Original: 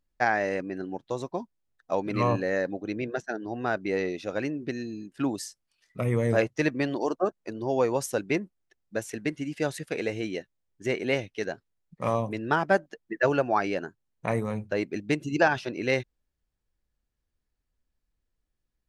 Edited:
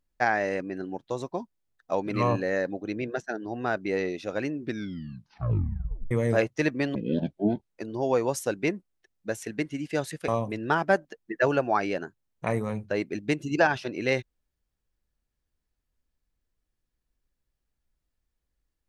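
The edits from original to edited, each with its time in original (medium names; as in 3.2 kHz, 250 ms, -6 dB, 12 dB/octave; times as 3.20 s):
4.61 s: tape stop 1.50 s
6.95–7.37 s: speed 56%
9.95–12.09 s: delete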